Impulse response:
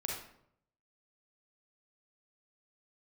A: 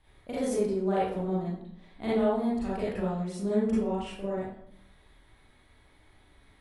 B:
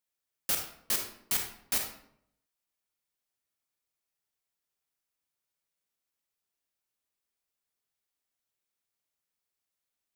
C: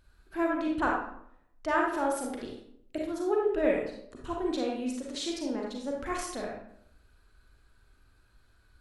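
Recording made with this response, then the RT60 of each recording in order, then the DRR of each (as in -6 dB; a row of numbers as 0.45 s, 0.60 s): C; 0.70 s, 0.70 s, 0.70 s; -9.5 dB, 2.5 dB, -2.0 dB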